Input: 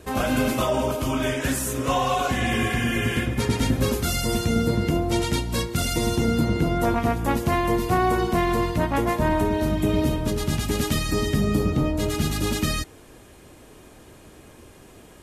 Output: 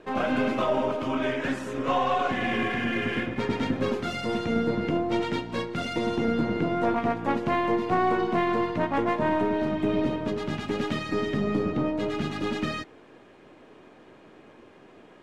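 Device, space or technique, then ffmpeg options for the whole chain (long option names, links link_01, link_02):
crystal radio: -af "highpass=200,lowpass=2700,aeval=exprs='if(lt(val(0),0),0.708*val(0),val(0))':channel_layout=same"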